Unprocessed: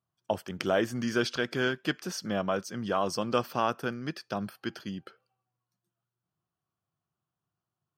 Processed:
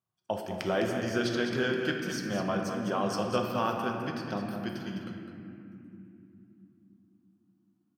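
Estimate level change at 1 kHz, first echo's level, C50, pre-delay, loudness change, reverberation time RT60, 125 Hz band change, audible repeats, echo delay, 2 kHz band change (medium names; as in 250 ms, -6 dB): -0.5 dB, -8.5 dB, 1.5 dB, 5 ms, -0.5 dB, 2.9 s, +1.5 dB, 1, 206 ms, -0.5 dB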